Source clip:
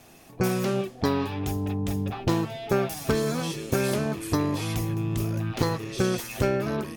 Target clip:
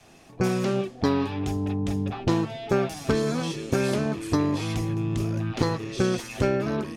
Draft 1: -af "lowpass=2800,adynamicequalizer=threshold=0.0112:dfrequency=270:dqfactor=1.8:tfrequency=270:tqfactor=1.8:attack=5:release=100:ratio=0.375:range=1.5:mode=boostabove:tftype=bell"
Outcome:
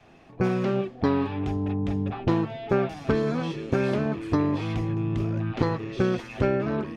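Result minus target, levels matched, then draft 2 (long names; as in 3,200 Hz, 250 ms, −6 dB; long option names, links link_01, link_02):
8,000 Hz band −14.5 dB
-af "lowpass=7900,adynamicequalizer=threshold=0.0112:dfrequency=270:dqfactor=1.8:tfrequency=270:tqfactor=1.8:attack=5:release=100:ratio=0.375:range=1.5:mode=boostabove:tftype=bell"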